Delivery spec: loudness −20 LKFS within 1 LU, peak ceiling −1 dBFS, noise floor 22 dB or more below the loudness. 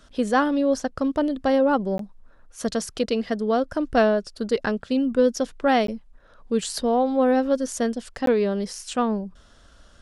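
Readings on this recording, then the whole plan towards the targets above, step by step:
number of dropouts 3; longest dropout 13 ms; integrated loudness −23.5 LKFS; sample peak −7.5 dBFS; target loudness −20.0 LKFS
→ repair the gap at 0:01.98/0:05.87/0:08.26, 13 ms
level +3.5 dB

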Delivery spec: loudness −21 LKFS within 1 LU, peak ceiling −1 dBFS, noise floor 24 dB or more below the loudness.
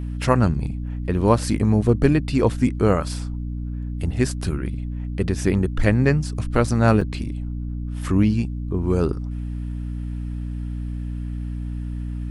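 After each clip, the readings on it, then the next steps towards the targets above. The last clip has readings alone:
number of dropouts 1; longest dropout 4.3 ms; mains hum 60 Hz; hum harmonics up to 300 Hz; level of the hum −25 dBFS; integrated loudness −23.0 LKFS; sample peak −1.5 dBFS; target loudness −21.0 LKFS
→ repair the gap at 0:07.01, 4.3 ms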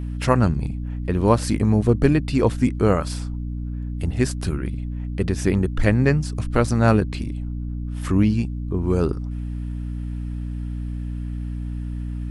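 number of dropouts 0; mains hum 60 Hz; hum harmonics up to 300 Hz; level of the hum −25 dBFS
→ mains-hum notches 60/120/180/240/300 Hz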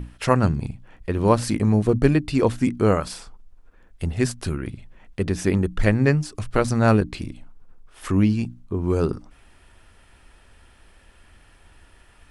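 mains hum none found; integrated loudness −22.0 LKFS; sample peak −3.0 dBFS; target loudness −21.0 LKFS
→ level +1 dB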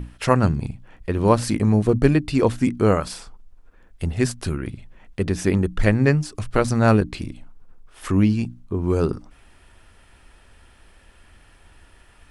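integrated loudness −21.0 LKFS; sample peak −2.0 dBFS; background noise floor −53 dBFS

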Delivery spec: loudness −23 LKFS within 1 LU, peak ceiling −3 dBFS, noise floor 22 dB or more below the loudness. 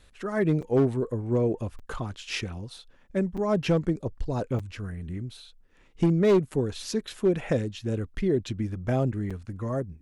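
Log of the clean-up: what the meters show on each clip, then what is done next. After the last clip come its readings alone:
share of clipped samples 0.7%; peaks flattened at −15.5 dBFS; number of dropouts 5; longest dropout 5.9 ms; integrated loudness −28.0 LKFS; sample peak −15.5 dBFS; target loudness −23.0 LKFS
→ clipped peaks rebuilt −15.5 dBFS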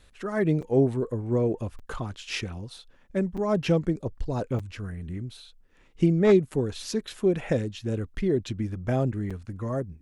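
share of clipped samples 0.0%; number of dropouts 5; longest dropout 5.9 ms
→ repair the gap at 0:00.62/0:01.79/0:03.37/0:04.59/0:09.30, 5.9 ms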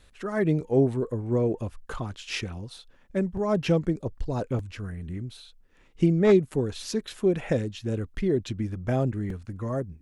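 number of dropouts 0; integrated loudness −27.5 LKFS; sample peak −8.5 dBFS; target loudness −23.0 LKFS
→ level +4.5 dB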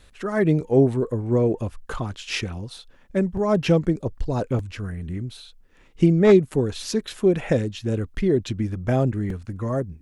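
integrated loudness −23.0 LKFS; sample peak −4.0 dBFS; background noise floor −53 dBFS

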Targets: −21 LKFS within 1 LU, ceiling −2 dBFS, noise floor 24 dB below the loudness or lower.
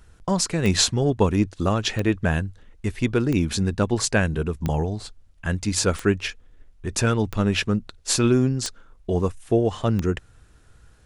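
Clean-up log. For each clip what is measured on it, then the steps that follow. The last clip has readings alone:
number of clicks 8; integrated loudness −23.5 LKFS; sample peak −6.5 dBFS; target loudness −21.0 LKFS
→ click removal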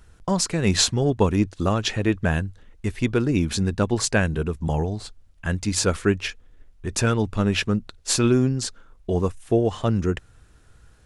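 number of clicks 0; integrated loudness −23.5 LKFS; sample peak −6.5 dBFS; target loudness −21.0 LKFS
→ level +2.5 dB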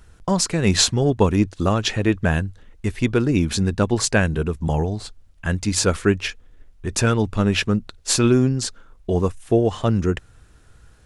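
integrated loudness −21.0 LKFS; sample peak −4.0 dBFS; background noise floor −51 dBFS

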